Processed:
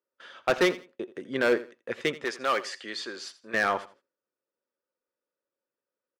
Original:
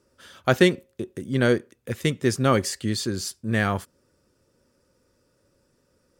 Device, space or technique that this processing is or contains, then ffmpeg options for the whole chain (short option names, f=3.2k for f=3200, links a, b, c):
walkie-talkie: -filter_complex "[0:a]highpass=460,lowpass=3k,asoftclip=type=hard:threshold=-19.5dB,agate=range=-23dB:threshold=-56dB:ratio=16:detection=peak,asettb=1/sr,asplit=3[a][b][c];[a]atrim=end=2.244[d];[b]atrim=start=2.24:end=3.54,asetpts=PTS-STARTPTS,afade=t=in:d=0.004:c=qsin,afade=t=out:st=1.296:d=0.004:c=qsin,highpass=f=780:p=1[e];[c]atrim=start=3.536[f];[d][e]acrossfade=d=0.004:c1=hsin:c2=qsin[g];[g][f]acrossfade=d=0.004:c1=qsin:c2=hsin,aecho=1:1:83|166:0.141|0.0353,volume=2.5dB"